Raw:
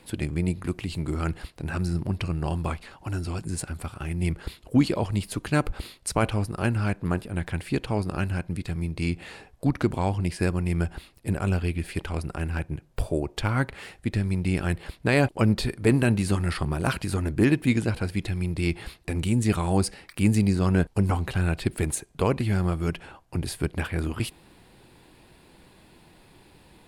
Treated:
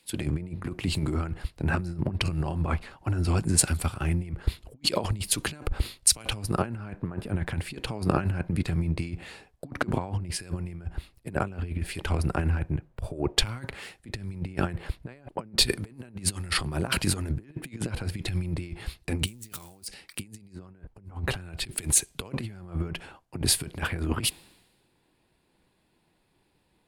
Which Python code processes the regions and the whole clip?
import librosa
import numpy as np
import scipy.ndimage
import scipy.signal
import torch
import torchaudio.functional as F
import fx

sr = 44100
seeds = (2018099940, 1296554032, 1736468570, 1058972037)

y = fx.chain(x, sr, fx.crossing_spikes(level_db=-25.5),
    fx.env_flatten(amount_pct=50), at=(19.27, 19.87))
y = fx.over_compress(y, sr, threshold_db=-29.0, ratio=-0.5)
y = fx.band_widen(y, sr, depth_pct=100)